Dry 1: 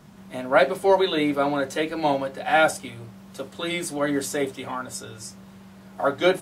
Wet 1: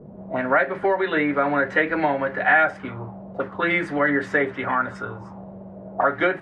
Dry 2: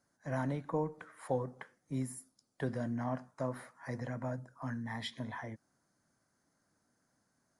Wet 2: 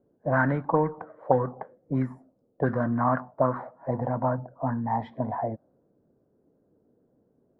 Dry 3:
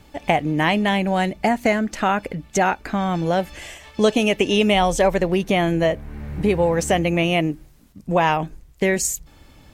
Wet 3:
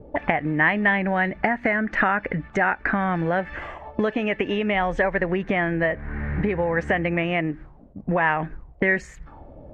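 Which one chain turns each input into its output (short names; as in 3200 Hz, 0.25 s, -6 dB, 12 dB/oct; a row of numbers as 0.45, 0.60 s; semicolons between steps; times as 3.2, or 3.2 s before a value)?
compressor 8:1, threshold -24 dBFS; envelope low-pass 440–1800 Hz up, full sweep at -29.5 dBFS; normalise peaks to -6 dBFS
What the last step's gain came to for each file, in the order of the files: +5.0, +9.5, +3.5 dB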